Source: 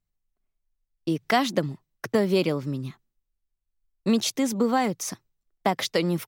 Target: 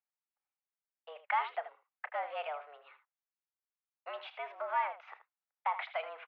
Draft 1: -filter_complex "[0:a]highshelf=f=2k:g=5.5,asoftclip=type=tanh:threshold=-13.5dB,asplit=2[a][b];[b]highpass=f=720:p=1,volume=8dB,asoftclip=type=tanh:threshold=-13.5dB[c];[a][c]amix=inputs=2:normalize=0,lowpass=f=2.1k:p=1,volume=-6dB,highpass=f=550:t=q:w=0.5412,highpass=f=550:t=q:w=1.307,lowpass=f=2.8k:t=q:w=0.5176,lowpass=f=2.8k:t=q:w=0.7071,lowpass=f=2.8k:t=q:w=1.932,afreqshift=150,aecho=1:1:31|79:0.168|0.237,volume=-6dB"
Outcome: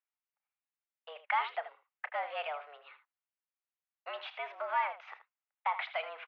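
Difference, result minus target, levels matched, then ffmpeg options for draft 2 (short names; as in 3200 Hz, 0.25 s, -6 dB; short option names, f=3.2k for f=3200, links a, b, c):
4000 Hz band +3.5 dB
-filter_complex "[0:a]highshelf=f=2k:g=-3,asoftclip=type=tanh:threshold=-13.5dB,asplit=2[a][b];[b]highpass=f=720:p=1,volume=8dB,asoftclip=type=tanh:threshold=-13.5dB[c];[a][c]amix=inputs=2:normalize=0,lowpass=f=2.1k:p=1,volume=-6dB,highpass=f=550:t=q:w=0.5412,highpass=f=550:t=q:w=1.307,lowpass=f=2.8k:t=q:w=0.5176,lowpass=f=2.8k:t=q:w=0.7071,lowpass=f=2.8k:t=q:w=1.932,afreqshift=150,aecho=1:1:31|79:0.168|0.237,volume=-6dB"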